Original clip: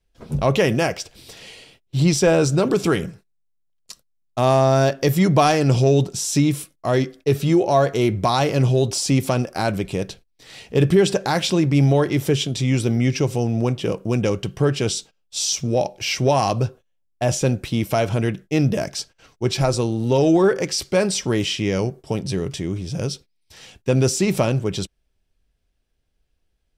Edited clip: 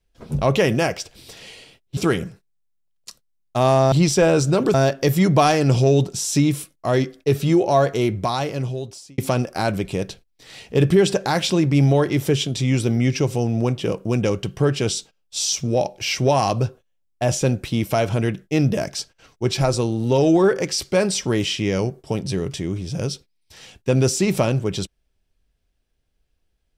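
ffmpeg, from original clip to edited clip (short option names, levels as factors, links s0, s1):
-filter_complex "[0:a]asplit=5[s0][s1][s2][s3][s4];[s0]atrim=end=1.972[s5];[s1]atrim=start=2.788:end=4.742[s6];[s2]atrim=start=1.968:end=2.792[s7];[s3]atrim=start=4.738:end=9.18,asetpts=PTS-STARTPTS,afade=t=out:st=3.102:d=1.34[s8];[s4]atrim=start=9.18,asetpts=PTS-STARTPTS,afade=t=in:d=0.004:c=hsin[s9];[s5][s6]acrossfade=d=0.004:c1=hsin:c2=hsin[s10];[s10][s7]acrossfade=d=0.004:c1=hsin:c2=hsin[s11];[s8][s9]concat=n=2:v=0:a=1[s12];[s11][s12]acrossfade=d=0.004:c1=hsin:c2=hsin"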